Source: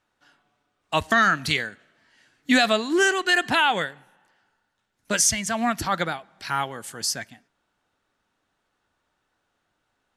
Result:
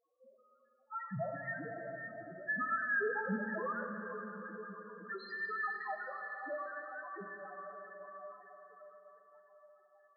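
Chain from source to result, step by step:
frequency inversion band by band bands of 2,000 Hz
gain into a clipping stage and back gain 17 dB
band-pass filter 120–2,000 Hz
on a send: feedback delay with all-pass diffusion 533 ms, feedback 55%, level −13 dB
on the sum: downward compressor 2 to 1, threshold −44 dBFS, peak gain reduction 13.5 dB
in parallel at +2.5 dB: brickwall limiter −35.5 dBFS, peak gain reduction 10 dB
on the sum: spectral peaks only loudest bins 1
dense smooth reverb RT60 3.8 s, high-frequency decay 0.75×, DRR 4 dB
level +2.5 dB

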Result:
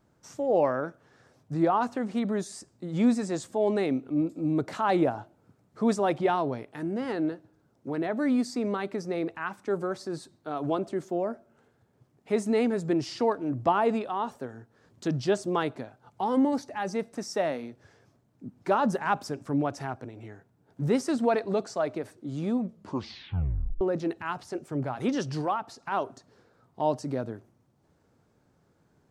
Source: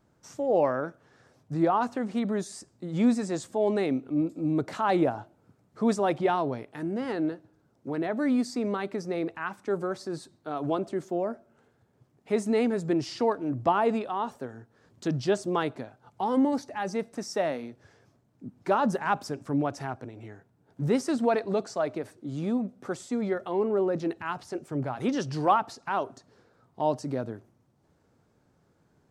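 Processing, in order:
0:22.61: tape stop 1.20 s
0:25.41–0:25.92: downward compressor 1.5 to 1, threshold −36 dBFS, peak gain reduction 7 dB

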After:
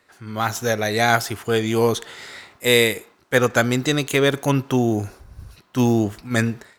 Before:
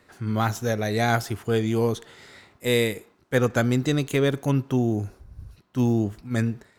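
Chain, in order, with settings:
low-shelf EQ 420 Hz −10 dB
automatic gain control gain up to 11.5 dB

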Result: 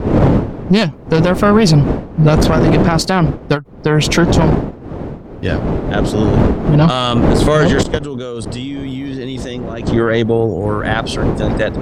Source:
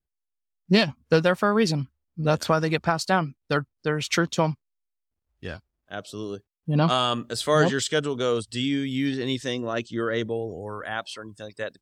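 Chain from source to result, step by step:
wind on the microphone 420 Hz −30 dBFS
0:07.83–0:09.87: output level in coarse steps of 20 dB
low-shelf EQ 440 Hz +6 dB
harmonic generator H 4 −17 dB, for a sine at −2 dBFS
boost into a limiter +14 dB
every ending faded ahead of time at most 280 dB per second
level −1 dB

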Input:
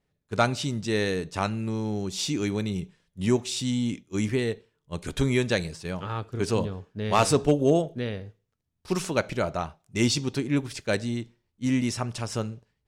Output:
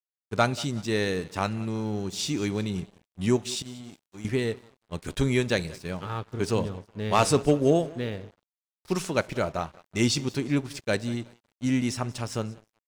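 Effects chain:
0:03.62–0:04.25: tuned comb filter 160 Hz, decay 1.4 s, mix 80%
on a send: repeating echo 185 ms, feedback 45%, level −20 dB
on the sum: dead-zone distortion −47.5 dBFS

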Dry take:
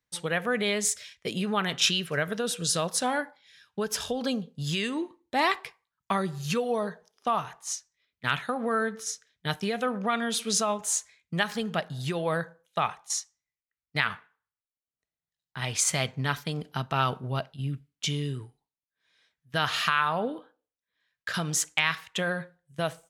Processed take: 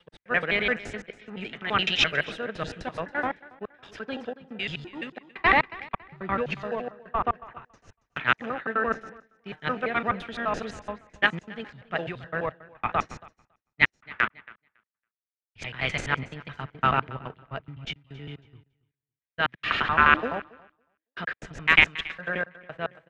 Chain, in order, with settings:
slices reordered back to front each 85 ms, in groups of 3
low-shelf EQ 200 Hz −8.5 dB
in parallel at −10 dB: sample-rate reduction 1,100 Hz, jitter 0%
on the sum: low-pass with resonance 2,200 Hz, resonance Q 2
on a send: repeating echo 278 ms, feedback 35%, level −14 dB
on the sum: multiband upward and downward expander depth 100%
level −1.5 dB

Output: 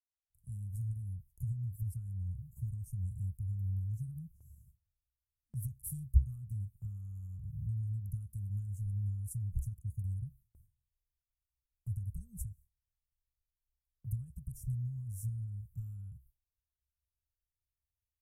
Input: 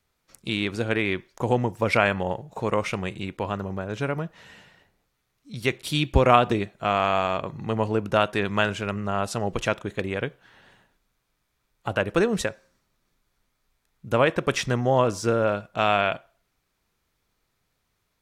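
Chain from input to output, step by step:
fade in at the beginning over 1.03 s
parametric band 67 Hz +9.5 dB 0.4 octaves
downward compressor 4 to 1, threshold −27 dBFS, peak gain reduction 15 dB
inverse Chebyshev band-stop filter 340–4,100 Hz, stop band 60 dB
noise gate with hold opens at −57 dBFS
level +4.5 dB

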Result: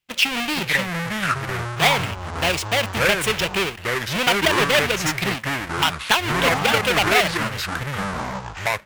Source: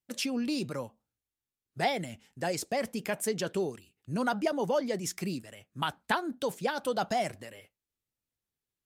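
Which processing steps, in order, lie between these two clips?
each half-wave held at its own peak
parametric band 2,700 Hz +13 dB 1.2 octaves
delay with pitch and tempo change per echo 425 ms, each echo −6 semitones, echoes 3
parametric band 260 Hz −7 dB 0.57 octaves
level +3 dB

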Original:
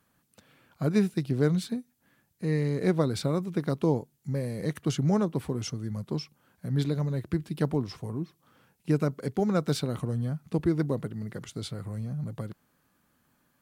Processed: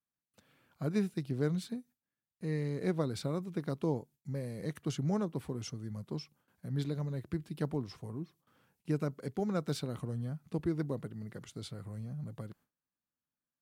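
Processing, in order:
noise gate with hold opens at −54 dBFS
level −7.5 dB

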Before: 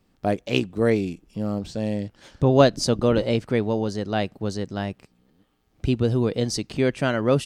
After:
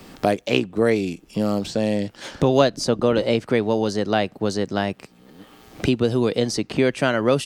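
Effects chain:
low-shelf EQ 140 Hz −11.5 dB
multiband upward and downward compressor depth 70%
level +4 dB

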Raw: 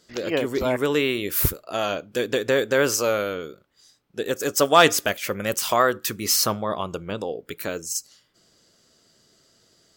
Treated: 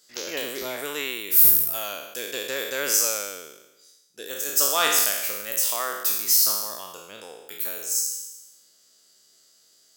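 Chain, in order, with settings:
peak hold with a decay on every bin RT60 1.02 s
RIAA equalisation recording
speech leveller within 4 dB 2 s
level −12 dB

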